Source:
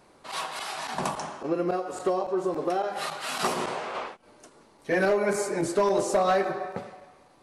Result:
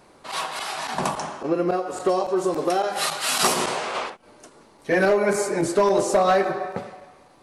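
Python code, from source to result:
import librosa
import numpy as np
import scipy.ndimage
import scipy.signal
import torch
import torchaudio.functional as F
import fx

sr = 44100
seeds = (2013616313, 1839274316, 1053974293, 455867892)

y = fx.high_shelf(x, sr, hz=3500.0, db=10.5, at=(2.09, 4.1))
y = y * 10.0 ** (4.5 / 20.0)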